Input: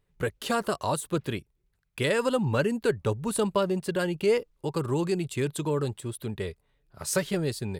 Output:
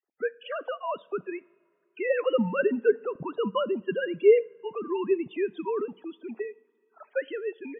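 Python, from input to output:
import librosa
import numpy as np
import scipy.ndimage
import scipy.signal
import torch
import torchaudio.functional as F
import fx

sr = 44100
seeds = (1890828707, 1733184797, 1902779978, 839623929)

y = fx.sine_speech(x, sr)
y = fx.spec_topn(y, sr, count=32)
y = fx.rev_double_slope(y, sr, seeds[0], early_s=0.49, late_s=2.7, knee_db=-18, drr_db=18.5)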